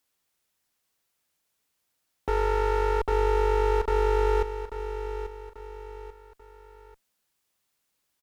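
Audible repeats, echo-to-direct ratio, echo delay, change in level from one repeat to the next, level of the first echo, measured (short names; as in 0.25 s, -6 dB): 3, -9.5 dB, 0.839 s, -7.5 dB, -10.5 dB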